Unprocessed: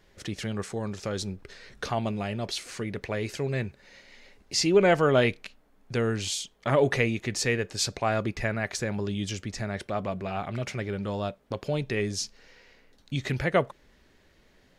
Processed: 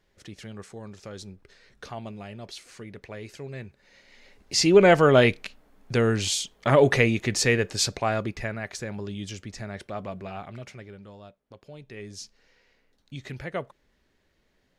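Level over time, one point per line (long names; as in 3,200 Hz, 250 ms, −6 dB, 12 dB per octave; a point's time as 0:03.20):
0:03.62 −8.5 dB
0:04.70 +4.5 dB
0:07.69 +4.5 dB
0:08.60 −4 dB
0:10.27 −4 dB
0:11.20 −16 dB
0:11.76 −16 dB
0:12.22 −8.5 dB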